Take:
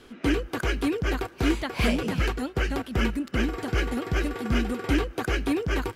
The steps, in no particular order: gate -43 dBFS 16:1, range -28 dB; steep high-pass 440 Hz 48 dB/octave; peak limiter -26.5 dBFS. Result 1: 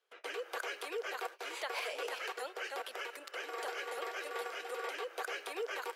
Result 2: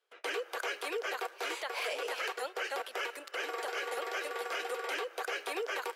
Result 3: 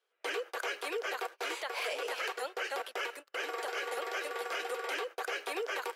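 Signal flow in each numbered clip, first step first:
peak limiter > gate > steep high-pass; gate > steep high-pass > peak limiter; steep high-pass > peak limiter > gate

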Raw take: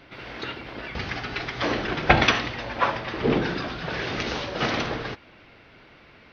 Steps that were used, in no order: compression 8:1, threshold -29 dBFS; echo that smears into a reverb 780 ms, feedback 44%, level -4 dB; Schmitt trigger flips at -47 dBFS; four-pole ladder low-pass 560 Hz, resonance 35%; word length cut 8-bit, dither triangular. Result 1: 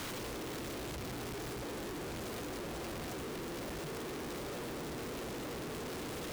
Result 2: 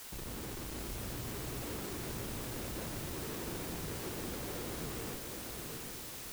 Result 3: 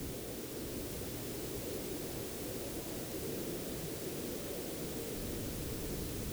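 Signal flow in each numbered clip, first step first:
echo that smears into a reverb > compression > four-pole ladder low-pass > word length cut > Schmitt trigger; compression > four-pole ladder low-pass > Schmitt trigger > word length cut > echo that smears into a reverb; compression > Schmitt trigger > four-pole ladder low-pass > word length cut > echo that smears into a reverb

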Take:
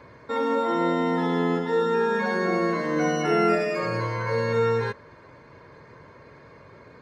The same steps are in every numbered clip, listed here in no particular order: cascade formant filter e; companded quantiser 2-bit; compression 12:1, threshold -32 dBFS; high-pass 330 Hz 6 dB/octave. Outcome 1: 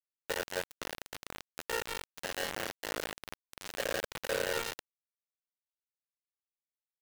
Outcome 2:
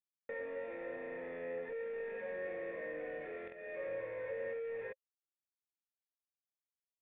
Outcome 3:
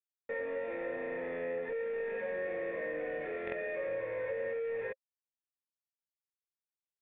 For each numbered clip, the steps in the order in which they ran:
high-pass > compression > cascade formant filter > companded quantiser; high-pass > companded quantiser > compression > cascade formant filter; high-pass > companded quantiser > cascade formant filter > compression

